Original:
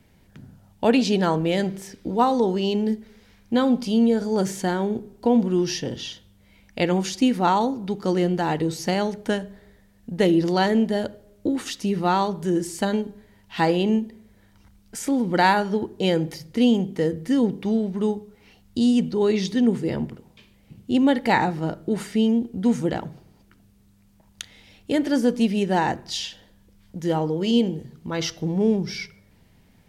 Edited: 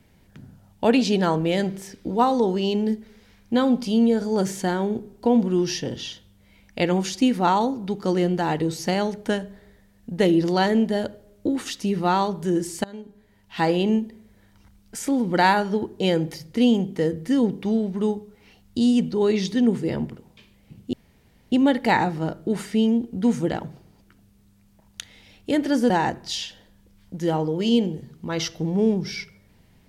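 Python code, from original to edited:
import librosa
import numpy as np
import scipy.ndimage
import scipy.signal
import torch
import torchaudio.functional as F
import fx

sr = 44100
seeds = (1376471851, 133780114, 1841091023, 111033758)

y = fx.edit(x, sr, fx.fade_in_from(start_s=12.84, length_s=0.92, floor_db=-22.0),
    fx.insert_room_tone(at_s=20.93, length_s=0.59),
    fx.cut(start_s=25.31, length_s=0.41), tone=tone)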